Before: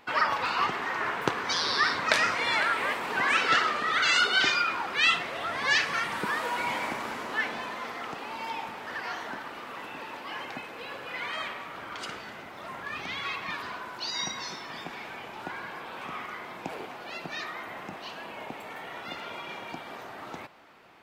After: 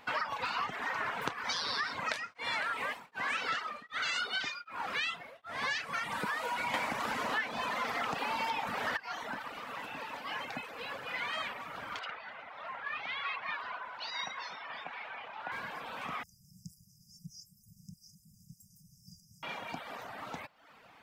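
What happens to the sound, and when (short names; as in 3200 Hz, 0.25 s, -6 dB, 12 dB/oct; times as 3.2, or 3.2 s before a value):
1.96–5.63 beating tremolo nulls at 1.3 Hz
6.74–8.97 gain +11.5 dB
11.99–15.52 three-band isolator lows -14 dB, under 510 Hz, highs -23 dB, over 3700 Hz
16.23–19.43 brick-wall FIR band-stop 200–4800 Hz
whole clip: reverb removal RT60 0.66 s; bell 360 Hz -13 dB 0.27 oct; compressor 10:1, threshold -31 dBFS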